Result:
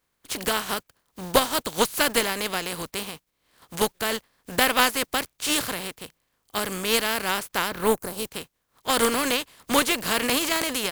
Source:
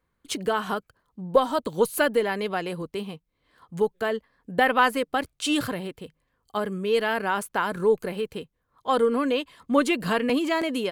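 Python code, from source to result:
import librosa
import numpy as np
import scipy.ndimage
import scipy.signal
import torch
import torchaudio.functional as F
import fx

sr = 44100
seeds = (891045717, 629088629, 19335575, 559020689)

y = fx.spec_flatten(x, sr, power=0.43)
y = fx.peak_eq(y, sr, hz=fx.line((7.68, 11000.0), (8.25, 1500.0)), db=-14.5, octaves=1.3, at=(7.68, 8.25), fade=0.02)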